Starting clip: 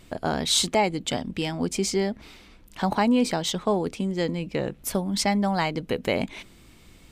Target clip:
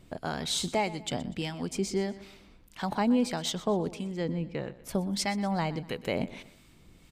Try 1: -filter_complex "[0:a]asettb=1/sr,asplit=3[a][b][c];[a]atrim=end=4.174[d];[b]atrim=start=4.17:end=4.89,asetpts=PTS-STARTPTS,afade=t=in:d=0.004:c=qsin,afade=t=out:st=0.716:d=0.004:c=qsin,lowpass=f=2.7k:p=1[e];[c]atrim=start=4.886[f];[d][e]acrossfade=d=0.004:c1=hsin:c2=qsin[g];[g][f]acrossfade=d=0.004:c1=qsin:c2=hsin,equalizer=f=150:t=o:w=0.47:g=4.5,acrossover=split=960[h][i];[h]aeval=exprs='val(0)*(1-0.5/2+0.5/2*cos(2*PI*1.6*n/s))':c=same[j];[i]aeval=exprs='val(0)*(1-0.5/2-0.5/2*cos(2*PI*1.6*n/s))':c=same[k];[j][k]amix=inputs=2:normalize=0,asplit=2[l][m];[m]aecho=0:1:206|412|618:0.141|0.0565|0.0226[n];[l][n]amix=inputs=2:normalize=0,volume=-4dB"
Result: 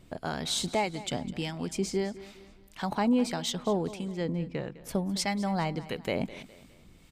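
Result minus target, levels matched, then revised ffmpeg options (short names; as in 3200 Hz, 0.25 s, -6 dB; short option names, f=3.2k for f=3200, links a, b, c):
echo 84 ms late
-filter_complex "[0:a]asettb=1/sr,asplit=3[a][b][c];[a]atrim=end=4.174[d];[b]atrim=start=4.17:end=4.89,asetpts=PTS-STARTPTS,afade=t=in:d=0.004:c=qsin,afade=t=out:st=0.716:d=0.004:c=qsin,lowpass=f=2.7k:p=1[e];[c]atrim=start=4.886[f];[d][e]acrossfade=d=0.004:c1=hsin:c2=qsin[g];[g][f]acrossfade=d=0.004:c1=qsin:c2=hsin,equalizer=f=150:t=o:w=0.47:g=4.5,acrossover=split=960[h][i];[h]aeval=exprs='val(0)*(1-0.5/2+0.5/2*cos(2*PI*1.6*n/s))':c=same[j];[i]aeval=exprs='val(0)*(1-0.5/2-0.5/2*cos(2*PI*1.6*n/s))':c=same[k];[j][k]amix=inputs=2:normalize=0,asplit=2[l][m];[m]aecho=0:1:122|244|366:0.141|0.0565|0.0226[n];[l][n]amix=inputs=2:normalize=0,volume=-4dB"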